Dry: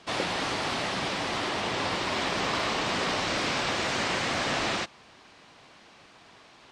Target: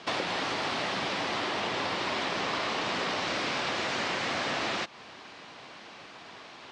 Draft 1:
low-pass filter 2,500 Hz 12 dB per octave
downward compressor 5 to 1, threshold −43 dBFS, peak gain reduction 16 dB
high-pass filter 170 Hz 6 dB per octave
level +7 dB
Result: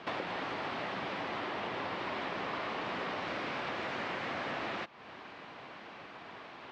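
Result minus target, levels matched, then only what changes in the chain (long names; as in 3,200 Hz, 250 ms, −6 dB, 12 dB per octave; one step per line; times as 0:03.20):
8,000 Hz band −11.5 dB; downward compressor: peak gain reduction +5.5 dB
change: low-pass filter 6,000 Hz 12 dB per octave
change: downward compressor 5 to 1, threshold −35.5 dBFS, peak gain reduction 10.5 dB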